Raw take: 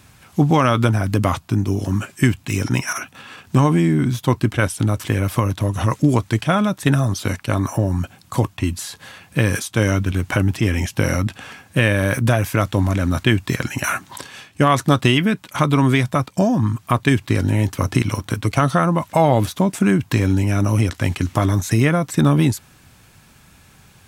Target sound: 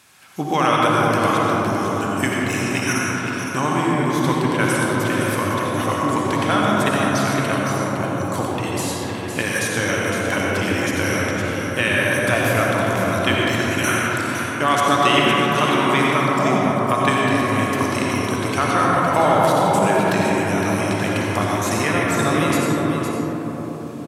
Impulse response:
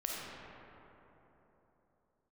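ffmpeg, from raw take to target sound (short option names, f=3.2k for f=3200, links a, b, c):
-filter_complex "[0:a]highpass=f=740:p=1,aecho=1:1:511:0.398[a];[1:a]atrim=start_sample=2205,asetrate=25578,aresample=44100[b];[a][b]afir=irnorm=-1:irlink=0,volume=-1dB"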